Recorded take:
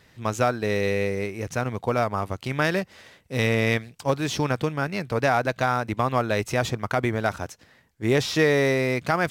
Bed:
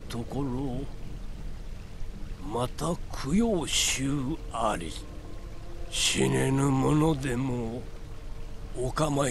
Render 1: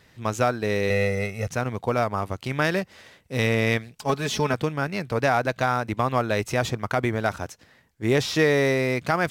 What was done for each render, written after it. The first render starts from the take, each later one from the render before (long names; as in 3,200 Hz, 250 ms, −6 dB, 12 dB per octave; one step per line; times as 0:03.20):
0:00.90–0:01.48: comb filter 1.5 ms, depth 97%
0:03.97–0:04.54: comb filter 4.7 ms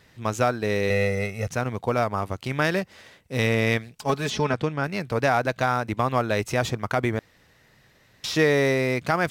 0:04.30–0:04.84: high-frequency loss of the air 60 metres
0:07.19–0:08.24: fill with room tone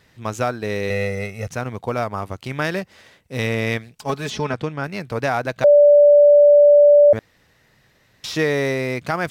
0:05.64–0:07.13: beep over 583 Hz −7 dBFS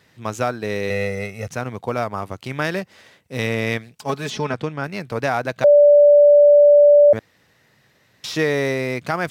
high-pass filter 93 Hz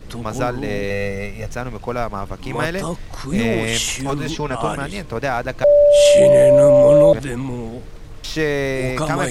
mix in bed +4 dB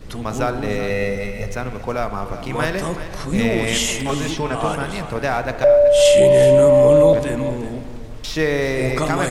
single-tap delay 376 ms −13 dB
spring reverb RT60 1.6 s, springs 38/55 ms, chirp 65 ms, DRR 9.5 dB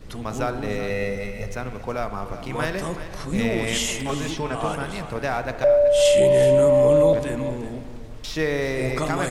level −4.5 dB